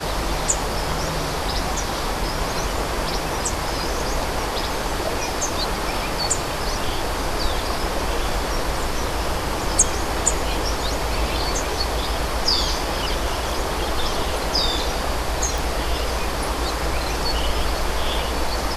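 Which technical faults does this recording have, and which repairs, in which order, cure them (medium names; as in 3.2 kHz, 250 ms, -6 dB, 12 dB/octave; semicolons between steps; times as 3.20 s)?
15.58 s: pop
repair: de-click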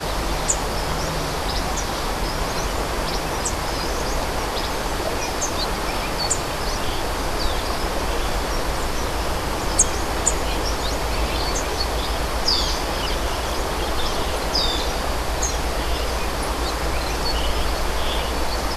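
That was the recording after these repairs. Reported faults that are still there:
nothing left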